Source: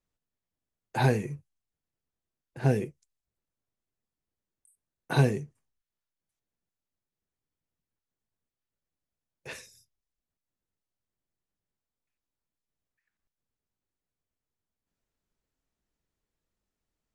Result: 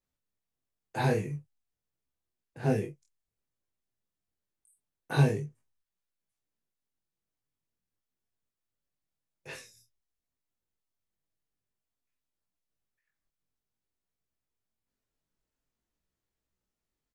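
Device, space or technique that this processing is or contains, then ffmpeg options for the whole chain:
double-tracked vocal: -filter_complex "[0:a]asplit=2[s0][s1];[s1]adelay=27,volume=0.501[s2];[s0][s2]amix=inputs=2:normalize=0,flanger=delay=15.5:depth=5.4:speed=0.49"

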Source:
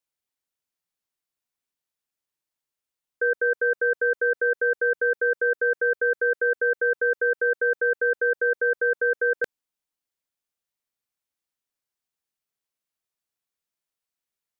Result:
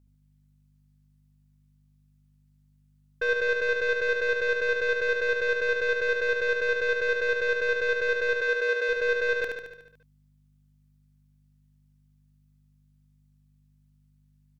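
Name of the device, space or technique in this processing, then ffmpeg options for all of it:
valve amplifier with mains hum: -filter_complex "[0:a]aeval=exprs='(tanh(12.6*val(0)+0.25)-tanh(0.25))/12.6':c=same,aeval=exprs='val(0)+0.000891*(sin(2*PI*50*n/s)+sin(2*PI*2*50*n/s)/2+sin(2*PI*3*50*n/s)/3+sin(2*PI*4*50*n/s)/4+sin(2*PI*5*50*n/s)/5)':c=same,asplit=3[s0][s1][s2];[s0]afade=t=out:st=8.34:d=0.02[s3];[s1]highpass=f=330:w=0.5412,highpass=f=330:w=1.3066,afade=t=in:st=8.34:d=0.02,afade=t=out:st=8.88:d=0.02[s4];[s2]afade=t=in:st=8.88:d=0.02[s5];[s3][s4][s5]amix=inputs=3:normalize=0,aecho=1:1:73|146|219|292|365|438|511|584:0.596|0.351|0.207|0.122|0.0722|0.0426|0.0251|0.0148"

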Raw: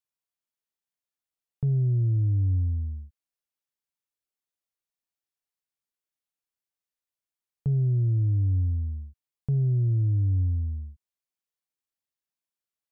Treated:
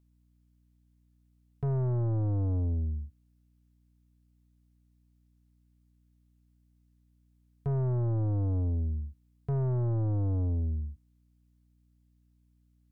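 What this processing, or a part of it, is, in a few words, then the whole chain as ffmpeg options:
valve amplifier with mains hum: -af "aeval=exprs='(tanh(31.6*val(0)+0.2)-tanh(0.2))/31.6':c=same,aeval=exprs='val(0)+0.000398*(sin(2*PI*60*n/s)+sin(2*PI*2*60*n/s)/2+sin(2*PI*3*60*n/s)/3+sin(2*PI*4*60*n/s)/4+sin(2*PI*5*60*n/s)/5)':c=same,volume=1.41"

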